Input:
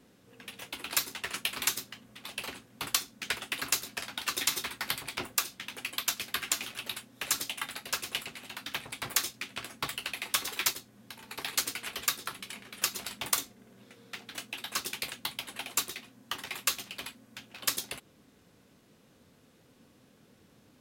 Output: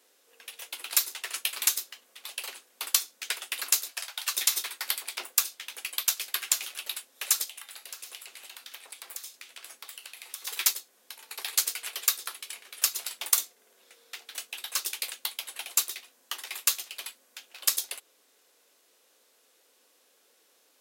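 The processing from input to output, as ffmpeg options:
-filter_complex "[0:a]asettb=1/sr,asplit=3[s0][s1][s2];[s0]atrim=end=3.914[s3];[s1]atrim=start=3.91:end=4.34,asetpts=PTS-STARTPTS,afade=t=in:d=0.004:c=qsin,afade=t=out:st=0.426:d=0.004:c=qsin,highpass=f=550:w=0.5412,highpass=f=550:w=1.3066[s4];[s2]atrim=start=4.336[s5];[s3][s4]acrossfade=d=0.004:c1=hsin:c2=qsin[s6];[s6][s5]acrossfade=d=0.004:c1=qsin:c2=hsin,asettb=1/sr,asplit=3[s7][s8][s9];[s7]atrim=end=7.444[s10];[s8]atrim=start=7.44:end=10.47,asetpts=PTS-STARTPTS,afade=t=in:d=0.004:c=qsin,afade=t=out:st=3.026:d=0.004:c=qsin,acompressor=threshold=0.00794:ratio=5:attack=3.2:release=140:knee=1:detection=peak[s11];[s9]atrim=start=10.466[s12];[s10][s11]acrossfade=d=0.004:c1=hsin:c2=qsin[s13];[s13][s12]acrossfade=d=0.004:c1=qsin:c2=hsin,highpass=f=410:w=0.5412,highpass=f=410:w=1.3066,highshelf=f=3700:g=11.5,volume=0.631"

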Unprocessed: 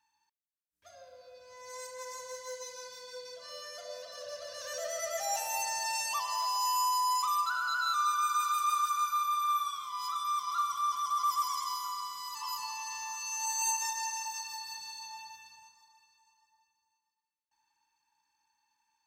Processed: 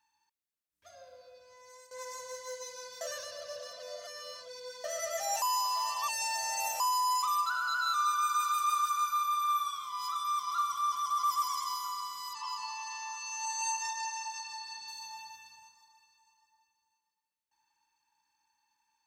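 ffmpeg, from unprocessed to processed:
-filter_complex "[0:a]asettb=1/sr,asplit=3[s0][s1][s2];[s0]atrim=end=12.334[s3];[s1]atrim=start=12.33:end=14.88,asetpts=PTS-STARTPTS,afade=t=in:d=0.004:c=qsin,afade=t=out:st=2.546:d=0.004:c=qsin,highpass=170,lowpass=5800[s4];[s2]atrim=start=14.876[s5];[s3][s4]acrossfade=d=0.004:c1=hsin:c2=qsin[s6];[s6][s5]acrossfade=d=0.004:c1=qsin:c2=hsin,asplit=6[s7][s8][s9][s10][s11][s12];[s7]atrim=end=1.91,asetpts=PTS-STARTPTS,afade=t=out:st=1.13:d=0.78:silence=0.158489[s13];[s8]atrim=start=1.91:end=3.012,asetpts=PTS-STARTPTS,afade=t=in:d=0.004:c=hsin:silence=0.158489[s14];[s9]atrim=start=3.008:end=4.842,asetpts=PTS-STARTPTS,areverse[s15];[s10]atrim=start=4.838:end=5.422[s16];[s11]atrim=start=5.418:end=6.802,asetpts=PTS-STARTPTS,areverse[s17];[s12]atrim=start=6.798[s18];[s13][s14]concat=n=2:v=0:a=1[s19];[s19][s15]acrossfade=d=0.004:c1=hsin:c2=hsin[s20];[s20][s16]acrossfade=d=0.004:c1=hsin:c2=hsin[s21];[s21][s17]acrossfade=d=0.004:c1=hsin:c2=hsin[s22];[s22][s18]acrossfade=d=0.004:c1=hsin:c2=hsin"

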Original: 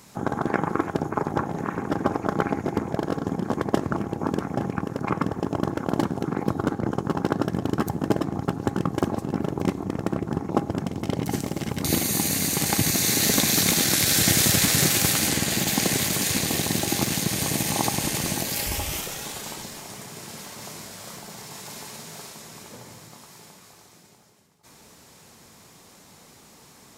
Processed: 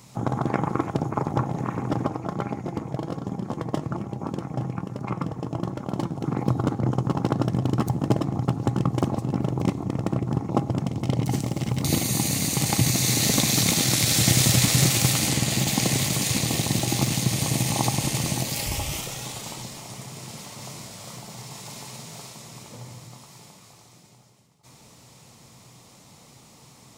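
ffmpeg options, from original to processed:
-filter_complex "[0:a]asplit=3[s0][s1][s2];[s0]afade=t=out:st=2.05:d=0.02[s3];[s1]flanger=delay=5:depth=1.5:regen=72:speed=1.2:shape=sinusoidal,afade=t=in:st=2.05:d=0.02,afade=t=out:st=6.22:d=0.02[s4];[s2]afade=t=in:st=6.22:d=0.02[s5];[s3][s4][s5]amix=inputs=3:normalize=0,asettb=1/sr,asplit=3[s6][s7][s8];[s6]atrim=end=11.334[s9];[s7]atrim=start=11.33:end=12,asetpts=PTS-STARTPTS,afade=t=in:d=0.004:c=qsin,afade=t=out:st=0.666:d=0.004:c=qsin,acrusher=bits=8:mode=log:mix=0:aa=0.000001[s10];[s8]atrim=start=11.996[s11];[s9][s10]acrossfade=d=0.004:c1=hsin:c2=qsin[s12];[s12][s11]acrossfade=d=0.004:c1=qsin:c2=hsin,equalizer=f=125:t=o:w=0.33:g=11,equalizer=f=400:t=o:w=0.33:g=-4,equalizer=f=1600:t=o:w=0.33:g=-9,equalizer=f=12500:t=o:w=0.33:g=-7"

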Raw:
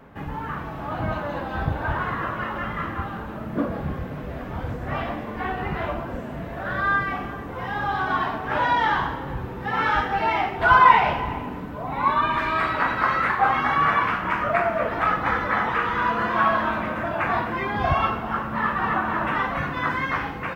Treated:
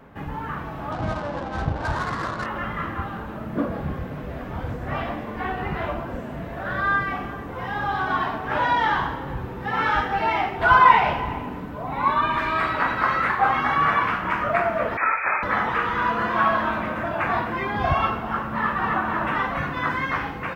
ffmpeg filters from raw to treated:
-filter_complex "[0:a]asettb=1/sr,asplit=3[s0][s1][s2];[s0]atrim=end=0.924[s3];[s1]atrim=start=0.92:end=2.46,asetpts=PTS-STARTPTS,afade=t=in:d=0.004:c=qsin,afade=t=out:st=1.536:d=0.004:c=qsin,adynamicsmooth=sensitivity=3.5:basefreq=570[s4];[s2]atrim=start=2.456[s5];[s3][s4]acrossfade=d=0.004:c1=hsin:c2=qsin[s6];[s6][s5]acrossfade=d=0.004:c1=qsin:c2=hsin,asettb=1/sr,asplit=3[s7][s8][s9];[s7]atrim=end=14.974[s10];[s8]atrim=start=14.97:end=15.43,asetpts=PTS-STARTPTS,afade=t=in:d=0.004:c=qsin,afade=t=out:st=0.456:d=0.004:c=qsin,lowpass=f=2200:t=q:w=0.5098,lowpass=f=2200:t=q:w=0.6013,lowpass=f=2200:t=q:w=0.9,lowpass=f=2200:t=q:w=2.563,afreqshift=-2600[s11];[s9]atrim=start=15.426[s12];[s10][s11]acrossfade=d=0.004:c1=hsin:c2=qsin[s13];[s13][s12]acrossfade=d=0.004:c1=qsin:c2=hsin"

